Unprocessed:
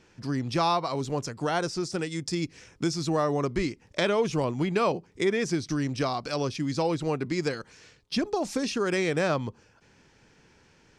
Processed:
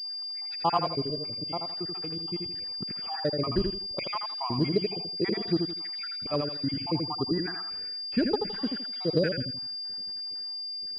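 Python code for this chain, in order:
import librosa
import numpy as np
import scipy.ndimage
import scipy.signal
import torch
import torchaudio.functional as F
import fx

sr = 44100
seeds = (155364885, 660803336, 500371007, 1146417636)

y = fx.spec_dropout(x, sr, seeds[0], share_pct=71)
y = fx.comb_fb(y, sr, f0_hz=130.0, decay_s=1.5, harmonics='all', damping=0.0, mix_pct=50, at=(1.0, 2.42), fade=0.02)
y = fx.air_absorb(y, sr, metres=180.0, at=(6.89, 7.55))
y = fx.echo_feedback(y, sr, ms=82, feedback_pct=30, wet_db=-5)
y = fx.pwm(y, sr, carrier_hz=4800.0)
y = y * 10.0 ** (2.0 / 20.0)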